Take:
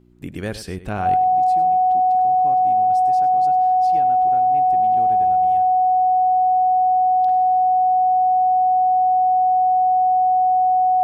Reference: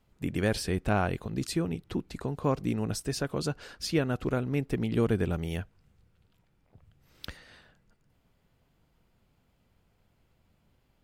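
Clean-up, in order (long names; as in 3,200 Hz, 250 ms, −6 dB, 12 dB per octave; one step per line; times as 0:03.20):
hum removal 60.2 Hz, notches 6
notch filter 740 Hz, Q 30
echo removal 99 ms −14.5 dB
level 0 dB, from 0:01.15 +12 dB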